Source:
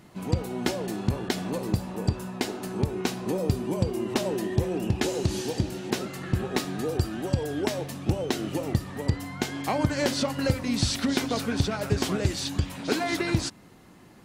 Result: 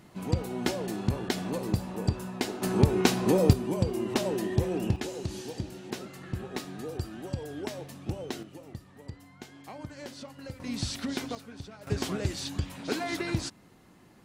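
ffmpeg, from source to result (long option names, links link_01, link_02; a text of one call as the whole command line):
ffmpeg -i in.wav -af "asetnsamples=nb_out_samples=441:pad=0,asendcmd='2.62 volume volume 5dB;3.53 volume volume -1.5dB;4.96 volume volume -8.5dB;8.43 volume volume -17dB;10.6 volume volume -7.5dB;11.35 volume volume -18dB;11.87 volume volume -5dB',volume=-2dB" out.wav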